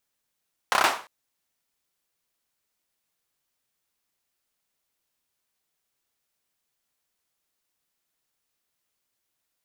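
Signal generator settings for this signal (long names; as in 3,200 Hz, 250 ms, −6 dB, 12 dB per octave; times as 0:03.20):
synth clap length 0.35 s, bursts 5, apart 30 ms, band 970 Hz, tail 0.37 s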